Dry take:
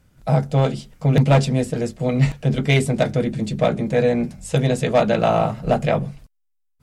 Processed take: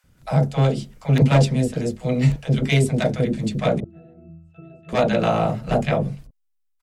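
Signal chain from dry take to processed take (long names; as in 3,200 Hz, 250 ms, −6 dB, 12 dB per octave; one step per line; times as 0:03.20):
0:01.52–0:03.01: dynamic equaliser 1,400 Hz, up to −4 dB, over −31 dBFS, Q 0.73
0:03.80–0:04.89: resonances in every octave E, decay 0.68 s
multiband delay without the direct sound highs, lows 40 ms, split 750 Hz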